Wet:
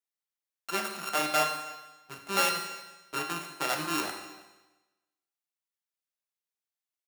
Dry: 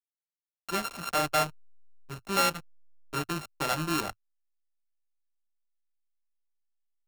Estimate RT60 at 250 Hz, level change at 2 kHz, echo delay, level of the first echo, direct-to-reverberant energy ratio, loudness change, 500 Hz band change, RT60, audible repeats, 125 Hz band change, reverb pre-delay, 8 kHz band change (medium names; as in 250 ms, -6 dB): 1.1 s, +1.5 dB, 322 ms, -22.5 dB, 3.5 dB, -0.5 dB, -1.5 dB, 1.1 s, 1, -9.0 dB, 10 ms, +1.0 dB